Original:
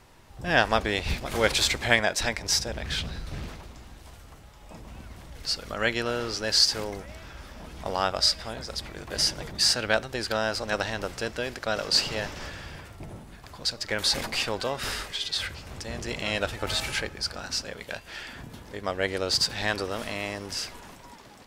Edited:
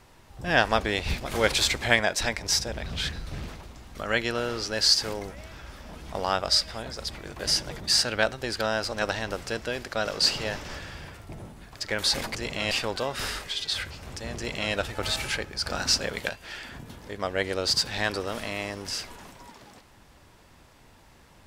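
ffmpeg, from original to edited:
-filter_complex "[0:a]asplit=9[s0][s1][s2][s3][s4][s5][s6][s7][s8];[s0]atrim=end=2.862[s9];[s1]atrim=start=2.858:end=3.132,asetpts=PTS-STARTPTS,areverse[s10];[s2]atrim=start=3.128:end=3.952[s11];[s3]atrim=start=5.658:end=13.512[s12];[s4]atrim=start=13.798:end=14.352[s13];[s5]atrim=start=16.008:end=16.372[s14];[s6]atrim=start=14.348:end=17.302[s15];[s7]atrim=start=17.298:end=17.932,asetpts=PTS-STARTPTS,volume=2.24[s16];[s8]atrim=start=17.928[s17];[s9][s10]acrossfade=d=0.004:c1=hsin:c2=hsin[s18];[s18][s11]acrossfade=d=0.004:c1=hsin:c2=hsin[s19];[s19][s12]acrossfade=d=0.004:c1=hsin:c2=hsin[s20];[s20][s13]acrossfade=d=0.004:c1=hsin:c2=hsin[s21];[s21][s14]acrossfade=d=0.004:c1=hsin:c2=hsin[s22];[s22][s15]acrossfade=d=0.004:c1=hsin:c2=hsin[s23];[s23][s16]acrossfade=d=0.004:c1=hsin:c2=hsin[s24];[s24][s17]acrossfade=d=0.004:c1=hsin:c2=hsin"

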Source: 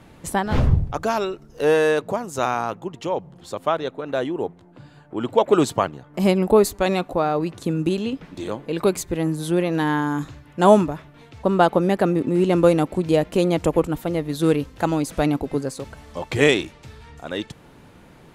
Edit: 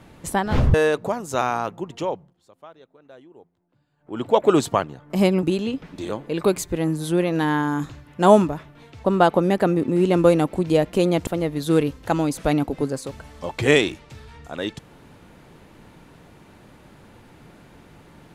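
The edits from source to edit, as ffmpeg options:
-filter_complex "[0:a]asplit=6[s0][s1][s2][s3][s4][s5];[s0]atrim=end=0.742[s6];[s1]atrim=start=1.778:end=3.38,asetpts=PTS-STARTPTS,afade=t=out:st=1.302:d=0.3:silence=0.0749894[s7];[s2]atrim=start=3.38:end=5.01,asetpts=PTS-STARTPTS,volume=0.075[s8];[s3]atrim=start=5.01:end=6.472,asetpts=PTS-STARTPTS,afade=t=in:d=0.3:silence=0.0749894[s9];[s4]atrim=start=7.818:end=13.662[s10];[s5]atrim=start=13.998[s11];[s7][s8][s9]concat=n=3:v=0:a=1[s12];[s6][s12]acrossfade=d=0.004:c1=hsin:c2=hsin[s13];[s13][s10]acrossfade=d=0.004:c1=hsin:c2=hsin[s14];[s14][s11]acrossfade=d=0.004:c1=hsin:c2=hsin"

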